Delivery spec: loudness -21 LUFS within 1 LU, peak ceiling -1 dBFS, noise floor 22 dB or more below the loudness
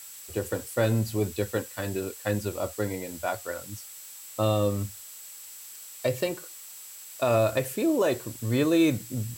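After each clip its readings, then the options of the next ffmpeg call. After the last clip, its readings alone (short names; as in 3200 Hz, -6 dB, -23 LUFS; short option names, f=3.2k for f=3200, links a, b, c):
steady tone 7700 Hz; tone level -47 dBFS; noise floor -45 dBFS; noise floor target -50 dBFS; loudness -28.0 LUFS; peak -12.0 dBFS; loudness target -21.0 LUFS
-> -af "bandreject=f=7.7k:w=30"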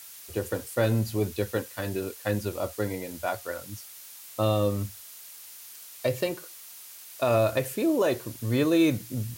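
steady tone none; noise floor -46 dBFS; noise floor target -50 dBFS
-> -af "afftdn=nr=6:nf=-46"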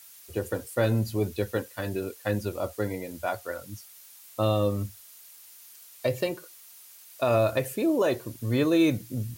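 noise floor -51 dBFS; loudness -28.0 LUFS; peak -12.0 dBFS; loudness target -21.0 LUFS
-> -af "volume=7dB"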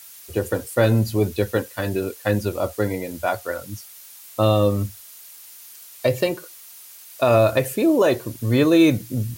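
loudness -21.0 LUFS; peak -5.0 dBFS; noise floor -44 dBFS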